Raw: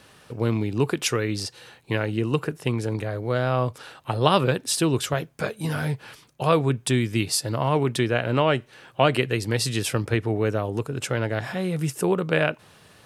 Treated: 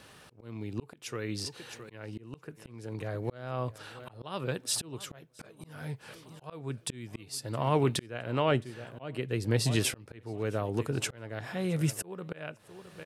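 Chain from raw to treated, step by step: feedback delay 666 ms, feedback 36%, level -21 dB; slow attack 773 ms; 8.51–9.76 s: tilt shelf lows +3.5 dB, about 780 Hz; trim -2 dB

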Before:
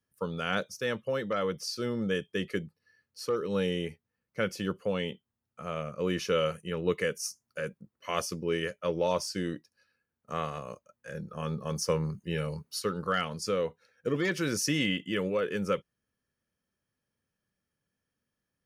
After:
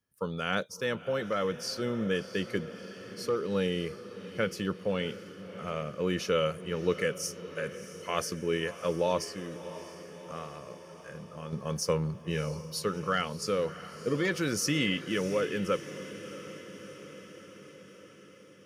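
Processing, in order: 9.24–11.53 s: compression 1.5:1, threshold -51 dBFS, peak gain reduction 8.5 dB; echo that smears into a reverb 662 ms, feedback 65%, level -14 dB

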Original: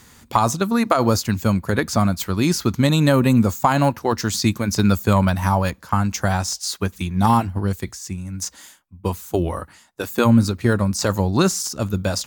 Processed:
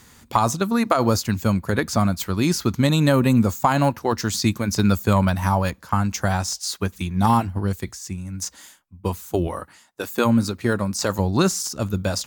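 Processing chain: 9.47–11.19 s: bass shelf 99 Hz -11.5 dB; trim -1.5 dB

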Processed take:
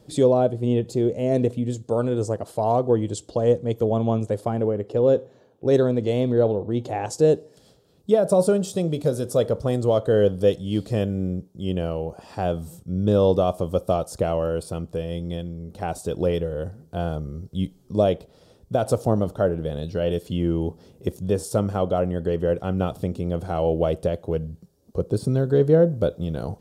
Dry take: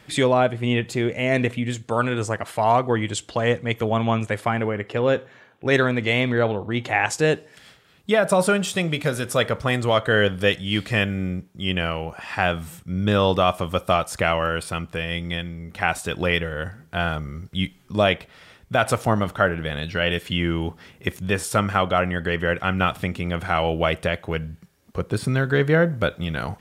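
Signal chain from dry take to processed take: FFT filter 230 Hz 0 dB, 490 Hz +4 dB, 2.1 kHz -23 dB, 4.5 kHz -5 dB

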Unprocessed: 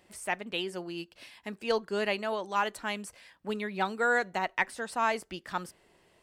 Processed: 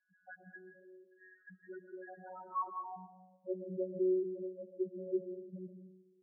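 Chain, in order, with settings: dynamic bell 3.8 kHz, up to -6 dB, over -44 dBFS, Q 0.7; vocoder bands 8, saw 185 Hz; in parallel at +0.5 dB: compression, threshold -42 dBFS, peak gain reduction 16.5 dB; on the sum: band-pass sweep 1.6 kHz -> 330 Hz, 2.19–4.12 s; level held to a coarse grid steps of 12 dB; loudest bins only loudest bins 2; on a send at -5 dB: distance through air 440 m + reverberation RT60 0.75 s, pre-delay 85 ms; on the sum: trim +8 dB

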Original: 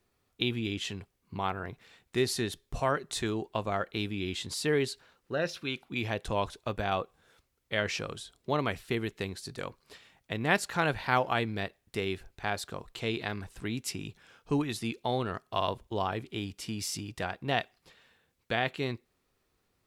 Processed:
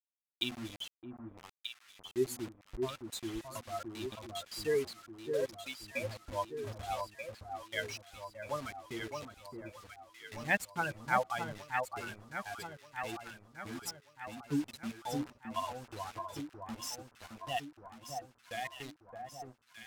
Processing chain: expander on every frequency bin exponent 3; high-pass 51 Hz 12 dB/octave; time-frequency box 1.32–3.08 s, 430–6100 Hz -13 dB; dynamic bell 140 Hz, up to -5 dB, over -54 dBFS, Q 0.8; hum notches 60/120/180/240 Hz; bit crusher 8-bit; vibrato 0.31 Hz 7.6 cents; on a send: echo whose repeats swap between lows and highs 617 ms, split 1.3 kHz, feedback 71%, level -4.5 dB; on the sum: decimation joined by straight lines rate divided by 2×; trim +1.5 dB

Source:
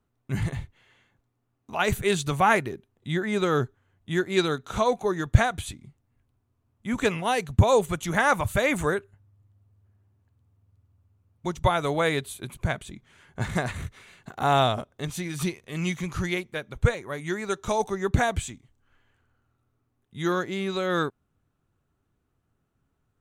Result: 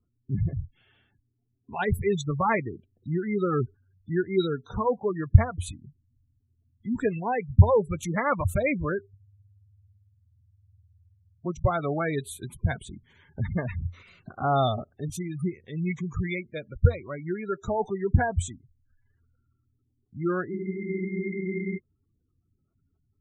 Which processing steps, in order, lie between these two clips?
spectral gate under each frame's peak -15 dB strong; peaking EQ 88 Hz +8 dB 0.26 oct; spectral freeze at 20.53 s, 1.24 s; Shepard-style phaser rising 0.36 Hz

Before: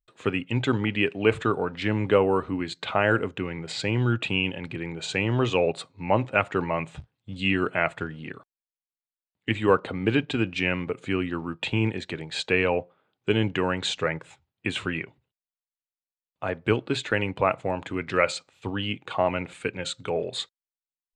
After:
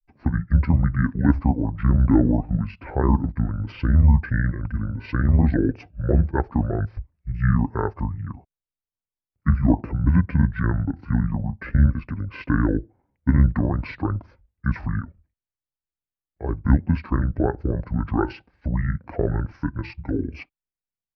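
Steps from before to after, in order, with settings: pitch shift -8 st; granulator 100 ms, grains 20 per s, spray 14 ms, pitch spread up and down by 0 st; RIAA curve playback; trim -2.5 dB

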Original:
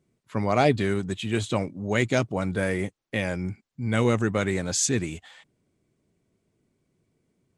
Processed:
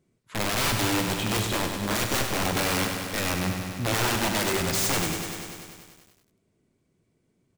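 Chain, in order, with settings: 4.10–4.57 s: high-pass 96 Hz -> 280 Hz 24 dB/octave; in parallel at -1.5 dB: peak limiter -15 dBFS, peak gain reduction 8 dB; on the sum: integer overflow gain 16.5 dB; early reflections 44 ms -13 dB, 80 ms -15 dB; on a send at -22 dB: reverberation RT60 0.85 s, pre-delay 3 ms; on the sum: bit-crushed delay 98 ms, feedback 80%, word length 8-bit, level -7 dB; trim -4.5 dB

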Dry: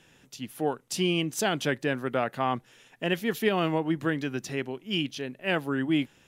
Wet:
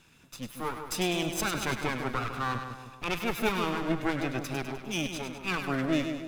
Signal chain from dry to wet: comb filter that takes the minimum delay 0.79 ms; two-band feedback delay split 1.1 kHz, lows 156 ms, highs 101 ms, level -7 dB

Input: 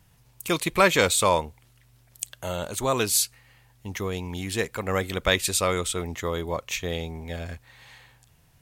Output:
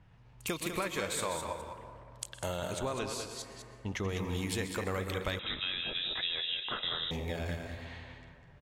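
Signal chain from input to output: chunks repeated in reverse 118 ms, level -10 dB; compression 12:1, threshold -32 dBFS, peak gain reduction 19.5 dB; level-controlled noise filter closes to 2 kHz, open at -35.5 dBFS; 2.73–4.09 s: distance through air 73 m; delay 200 ms -7.5 dB; reverberation RT60 2.7 s, pre-delay 108 ms, DRR 10 dB; 5.39–7.11 s: frequency inversion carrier 3.8 kHz

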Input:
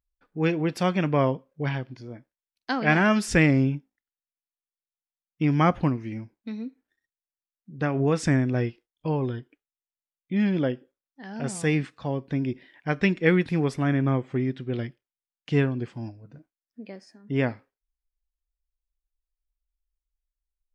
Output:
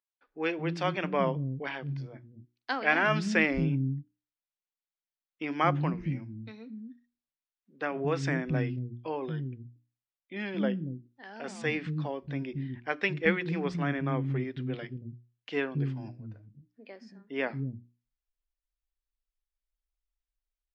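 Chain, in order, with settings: Gaussian low-pass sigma 1.7 samples; tilt shelf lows -3 dB, about 1.3 kHz; hum notches 60/120/180/240/300/360 Hz; bands offset in time highs, lows 230 ms, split 260 Hz; trim -2 dB

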